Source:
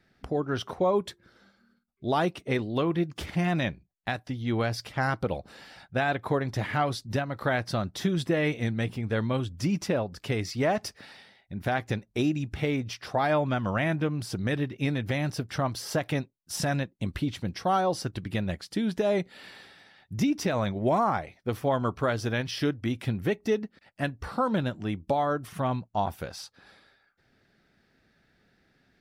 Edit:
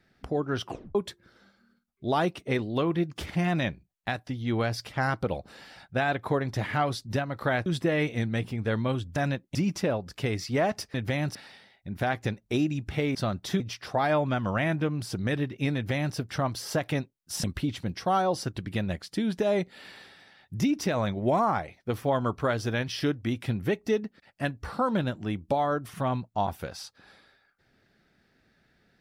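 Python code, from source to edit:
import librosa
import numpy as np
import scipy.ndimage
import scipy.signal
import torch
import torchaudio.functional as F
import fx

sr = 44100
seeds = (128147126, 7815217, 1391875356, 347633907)

y = fx.edit(x, sr, fx.tape_stop(start_s=0.64, length_s=0.31),
    fx.move(start_s=7.66, length_s=0.45, to_s=12.8),
    fx.duplicate(start_s=14.95, length_s=0.41, to_s=11.0),
    fx.move(start_s=16.64, length_s=0.39, to_s=9.61), tone=tone)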